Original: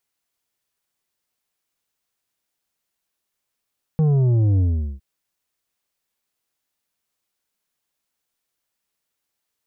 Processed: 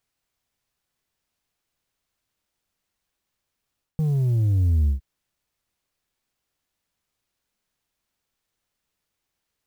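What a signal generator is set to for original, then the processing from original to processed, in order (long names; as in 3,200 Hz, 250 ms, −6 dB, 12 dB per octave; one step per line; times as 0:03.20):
bass drop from 160 Hz, over 1.01 s, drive 7.5 dB, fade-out 0.41 s, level −15 dB
reversed playback
downward compressor 12 to 1, threshold −27 dBFS
reversed playback
low-shelf EQ 150 Hz +11.5 dB
converter with an unsteady clock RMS 0.022 ms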